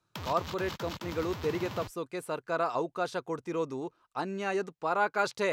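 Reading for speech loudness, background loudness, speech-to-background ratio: -33.5 LUFS, -41.0 LUFS, 7.5 dB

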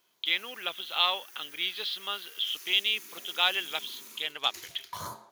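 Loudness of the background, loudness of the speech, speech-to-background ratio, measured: -45.5 LUFS, -29.5 LUFS, 16.0 dB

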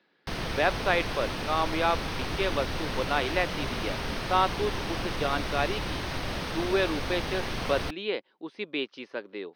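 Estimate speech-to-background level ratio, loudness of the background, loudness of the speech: 2.5 dB, -33.0 LUFS, -30.5 LUFS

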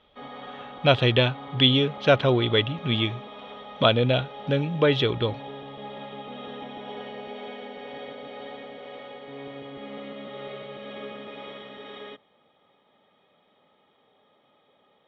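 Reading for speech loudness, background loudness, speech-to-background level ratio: -22.5 LUFS, -39.5 LUFS, 17.0 dB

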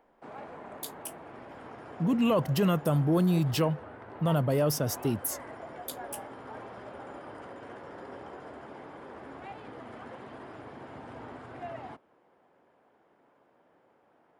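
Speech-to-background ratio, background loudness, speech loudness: 17.0 dB, -44.5 LUFS, -27.5 LUFS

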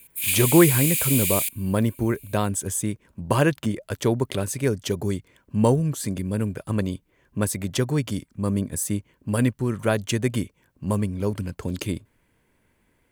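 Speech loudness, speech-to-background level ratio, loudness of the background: -25.0 LUFS, -3.0 dB, -22.0 LUFS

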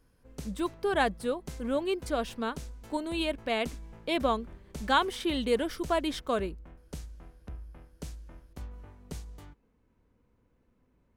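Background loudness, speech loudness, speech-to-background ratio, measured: -47.0 LUFS, -31.0 LUFS, 16.0 dB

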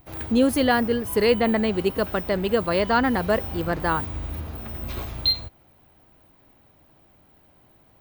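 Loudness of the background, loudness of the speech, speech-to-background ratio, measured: -30.5 LUFS, -23.0 LUFS, 7.5 dB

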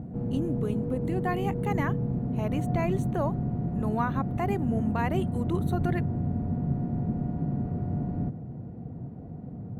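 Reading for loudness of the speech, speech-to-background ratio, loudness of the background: -33.0 LUFS, -2.5 dB, -30.5 LUFS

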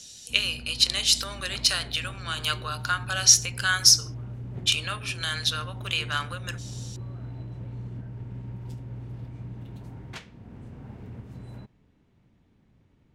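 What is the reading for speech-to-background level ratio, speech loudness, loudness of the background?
16.5 dB, -23.0 LUFS, -39.5 LUFS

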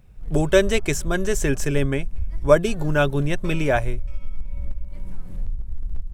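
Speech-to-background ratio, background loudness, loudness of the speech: 13.5 dB, -35.5 LUFS, -22.0 LUFS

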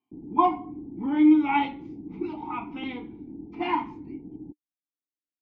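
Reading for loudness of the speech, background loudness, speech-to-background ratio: -25.5 LUFS, -41.0 LUFS, 15.5 dB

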